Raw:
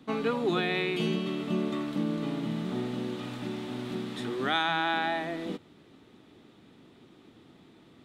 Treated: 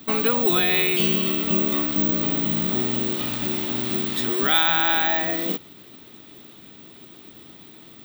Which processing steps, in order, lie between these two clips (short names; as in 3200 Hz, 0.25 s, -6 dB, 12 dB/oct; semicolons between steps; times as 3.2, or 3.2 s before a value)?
high shelf 2500 Hz +11 dB; in parallel at -1.5 dB: limiter -25 dBFS, peak gain reduction 15.5 dB; on the sum: careless resampling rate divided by 2×, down none, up zero stuff; gain +1 dB